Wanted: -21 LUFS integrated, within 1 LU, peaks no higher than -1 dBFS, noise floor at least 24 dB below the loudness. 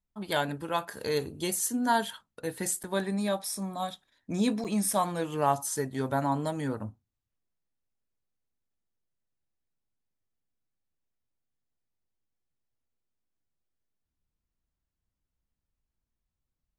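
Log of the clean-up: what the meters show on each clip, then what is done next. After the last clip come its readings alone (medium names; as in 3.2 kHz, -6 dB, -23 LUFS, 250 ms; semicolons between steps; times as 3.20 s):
dropouts 2; longest dropout 7.8 ms; loudness -30.5 LUFS; peak level -13.0 dBFS; loudness target -21.0 LUFS
-> interpolate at 2.83/4.64 s, 7.8 ms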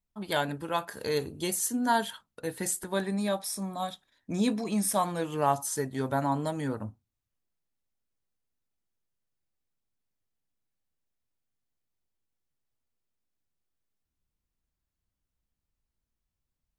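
dropouts 0; loudness -30.5 LUFS; peak level -13.0 dBFS; loudness target -21.0 LUFS
-> trim +9.5 dB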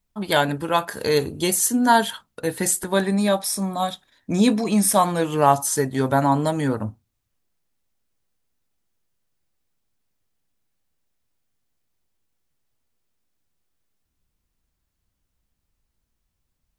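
loudness -21.0 LUFS; peak level -3.5 dBFS; noise floor -76 dBFS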